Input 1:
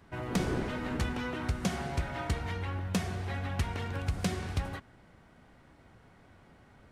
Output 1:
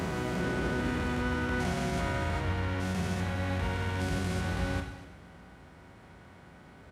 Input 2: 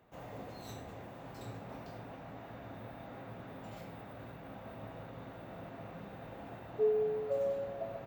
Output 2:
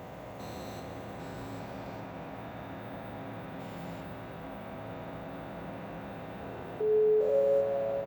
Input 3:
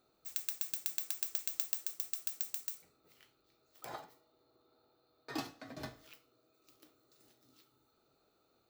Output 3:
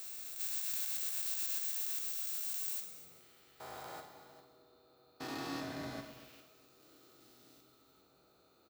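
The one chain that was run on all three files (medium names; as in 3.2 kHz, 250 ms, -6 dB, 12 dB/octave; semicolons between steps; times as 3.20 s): spectrogram pixelated in time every 400 ms; high-pass 52 Hz 24 dB/octave; peak limiter -30.5 dBFS; delay 245 ms -16 dB; two-slope reverb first 0.72 s, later 2.8 s, from -18 dB, DRR 3.5 dB; trim +6 dB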